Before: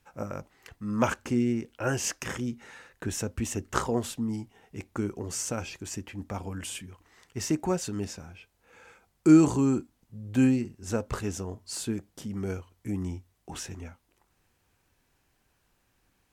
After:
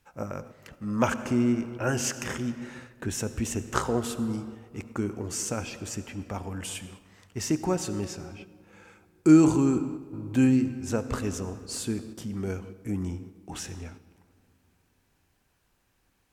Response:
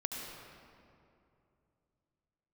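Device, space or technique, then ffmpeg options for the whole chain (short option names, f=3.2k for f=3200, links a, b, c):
keyed gated reverb: -filter_complex "[0:a]asplit=3[a][b][c];[1:a]atrim=start_sample=2205[d];[b][d]afir=irnorm=-1:irlink=0[e];[c]apad=whole_len=720030[f];[e][f]sidechaingate=range=-6dB:threshold=-50dB:ratio=16:detection=peak,volume=-8.5dB[g];[a][g]amix=inputs=2:normalize=0,volume=-1.5dB"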